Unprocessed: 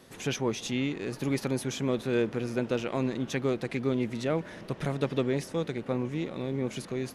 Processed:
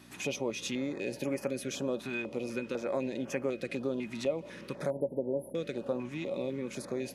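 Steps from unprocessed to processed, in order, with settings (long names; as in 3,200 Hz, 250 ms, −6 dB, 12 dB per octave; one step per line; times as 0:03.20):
hollow resonant body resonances 560/2,500 Hz, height 15 dB, ringing for 95 ms
downward compressor 3 to 1, threshold −29 dBFS, peak gain reduction 10 dB
0:04.90–0:05.55: linear-phase brick-wall band-stop 1,000–9,800 Hz
mains hum 60 Hz, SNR 14 dB
high-pass filter 200 Hz 12 dB per octave
notch on a step sequencer 4 Hz 510–3,800 Hz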